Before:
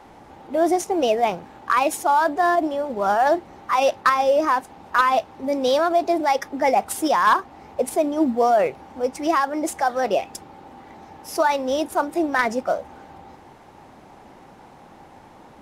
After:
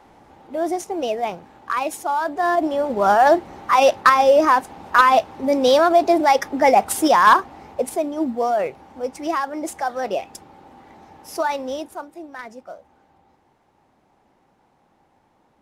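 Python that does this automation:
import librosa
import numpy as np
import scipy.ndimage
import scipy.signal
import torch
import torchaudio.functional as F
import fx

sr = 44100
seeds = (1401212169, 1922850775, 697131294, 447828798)

y = fx.gain(x, sr, db=fx.line((2.25, -4.0), (2.84, 4.5), (7.38, 4.5), (8.08, -3.0), (11.64, -3.0), (12.16, -15.0)))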